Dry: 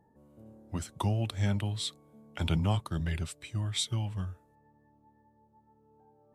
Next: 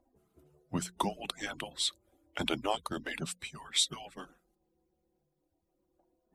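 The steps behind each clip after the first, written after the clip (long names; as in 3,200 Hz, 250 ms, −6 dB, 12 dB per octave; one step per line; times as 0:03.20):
harmonic-percussive split with one part muted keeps percussive
mains-hum notches 60/120/180 Hz
level +4 dB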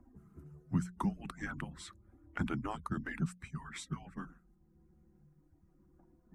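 drawn EQ curve 190 Hz 0 dB, 580 Hz −23 dB, 1,300 Hz −8 dB, 1,800 Hz −11 dB, 3,500 Hz −30 dB, 6,200 Hz −20 dB, 12,000 Hz −24 dB
multiband upward and downward compressor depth 40%
level +7.5 dB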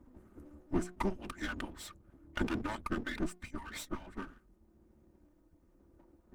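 lower of the sound and its delayed copy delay 3.3 ms
level +3.5 dB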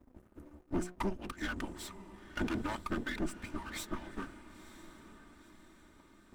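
leveller curve on the samples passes 2
feedback delay with all-pass diffusion 959 ms, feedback 50%, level −14.5 dB
level −6 dB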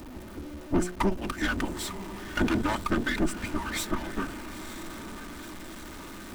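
converter with a step at zero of −47 dBFS
level +8.5 dB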